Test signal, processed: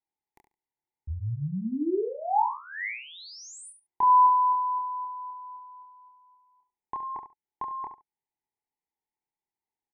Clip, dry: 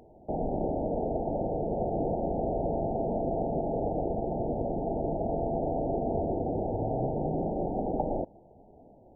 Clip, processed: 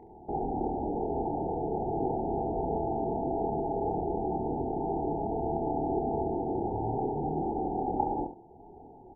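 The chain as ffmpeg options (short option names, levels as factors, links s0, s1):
-filter_complex "[0:a]firequalizer=gain_entry='entry(230,0);entry(390,7);entry(580,-11);entry(850,13);entry(1300,-21);entry(2000,1);entry(2900,-18)':delay=0.05:min_phase=1,asplit=2[s0][s1];[s1]acompressor=threshold=0.00447:ratio=6,volume=1.06[s2];[s0][s2]amix=inputs=2:normalize=0,asplit=2[s3][s4];[s4]adelay=27,volume=0.708[s5];[s3][s5]amix=inputs=2:normalize=0,aecho=1:1:70|140:0.335|0.0536,volume=0.501"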